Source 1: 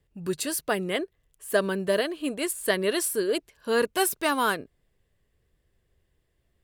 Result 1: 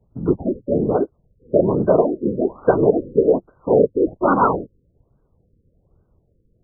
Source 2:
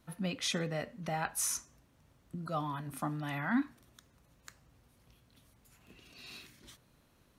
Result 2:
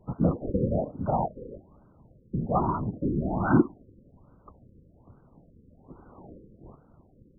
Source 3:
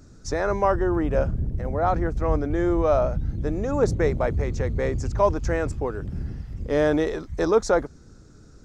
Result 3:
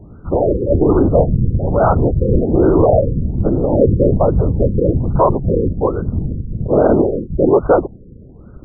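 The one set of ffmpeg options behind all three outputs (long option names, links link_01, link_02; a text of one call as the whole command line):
ffmpeg -i in.wav -filter_complex "[0:a]aemphasis=mode=reproduction:type=75kf,afftfilt=real='hypot(re,im)*cos(2*PI*random(0))':imag='hypot(re,im)*sin(2*PI*random(1))':win_size=512:overlap=0.75,acrossover=split=290|2300[link_01][link_02][link_03];[link_03]acrusher=samples=12:mix=1:aa=0.000001[link_04];[link_01][link_02][link_04]amix=inputs=3:normalize=0,alimiter=level_in=18dB:limit=-1dB:release=50:level=0:latency=1,afftfilt=real='re*lt(b*sr/1024,530*pow(1600/530,0.5+0.5*sin(2*PI*1.2*pts/sr)))':imag='im*lt(b*sr/1024,530*pow(1600/530,0.5+0.5*sin(2*PI*1.2*pts/sr)))':win_size=1024:overlap=0.75,volume=-1dB" out.wav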